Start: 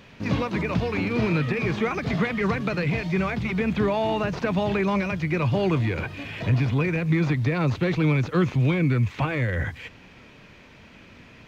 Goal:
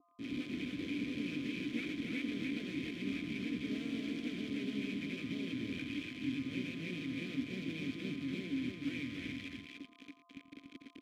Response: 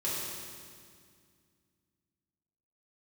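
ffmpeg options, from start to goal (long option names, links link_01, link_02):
-filter_complex "[0:a]aemphasis=mode=reproduction:type=bsi,areverse,acompressor=threshold=-25dB:ratio=6,areverse,aexciter=amount=3.2:drive=0.8:freq=4400,acrusher=bits=3:dc=4:mix=0:aa=0.000001,aeval=exprs='val(0)+0.0112*sin(2*PI*990*n/s)':channel_layout=same,asplit=3[link_01][link_02][link_03];[link_02]asetrate=29433,aresample=44100,atempo=1.49831,volume=-7dB[link_04];[link_03]asetrate=52444,aresample=44100,atempo=0.840896,volume=-9dB[link_05];[link_01][link_04][link_05]amix=inputs=3:normalize=0,asplit=3[link_06][link_07][link_08];[link_06]bandpass=frequency=270:width_type=q:width=8,volume=0dB[link_09];[link_07]bandpass=frequency=2290:width_type=q:width=8,volume=-6dB[link_10];[link_08]bandpass=frequency=3010:width_type=q:width=8,volume=-9dB[link_11];[link_09][link_10][link_11]amix=inputs=3:normalize=0,asplit=2[link_12][link_13];[link_13]aecho=0:1:90|117|301:0.178|0.2|0.631[link_14];[link_12][link_14]amix=inputs=2:normalize=0,asetrate=45938,aresample=44100,adynamicequalizer=threshold=0.00126:dfrequency=1500:dqfactor=0.7:tfrequency=1500:tqfactor=0.7:attack=5:release=100:ratio=0.375:range=1.5:mode=boostabove:tftype=highshelf,volume=2dB"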